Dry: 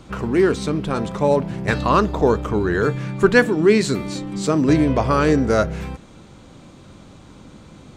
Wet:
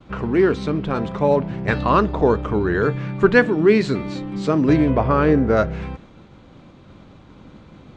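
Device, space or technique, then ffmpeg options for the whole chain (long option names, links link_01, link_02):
hearing-loss simulation: -filter_complex "[0:a]asettb=1/sr,asplit=3[link_01][link_02][link_03];[link_01]atrim=end=4.904[link_04];[link_02]atrim=start=4.9:end=5.57,asetpts=PTS-STARTPTS,afade=type=in:duration=0.004:curve=qsin,afade=type=out:start_time=0.666:duration=0.004:curve=qsin,aemphasis=mode=reproduction:type=75fm[link_05];[link_03]atrim=start=5.566[link_06];[link_04][link_05]acrossfade=duration=0.004:curve1=hsin:curve2=qsin[link_07];[link_07][link_06]acrossfade=duration=0.004:curve1=qsin:curve2=hsin,lowpass=3500,agate=range=-33dB:threshold=-41dB:ratio=3:detection=peak"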